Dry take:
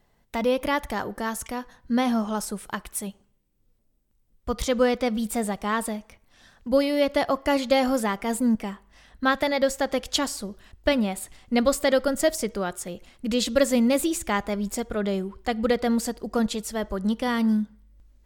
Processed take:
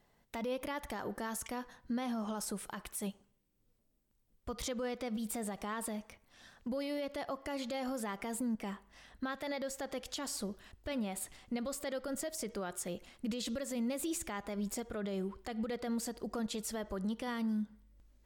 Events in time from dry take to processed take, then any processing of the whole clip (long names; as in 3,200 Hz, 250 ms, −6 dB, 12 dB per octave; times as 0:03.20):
0:05.16–0:06.98: downward compressor 4 to 1, threshold −30 dBFS
whole clip: low-shelf EQ 78 Hz −7.5 dB; downward compressor, threshold −27 dBFS; brickwall limiter −26 dBFS; level −3.5 dB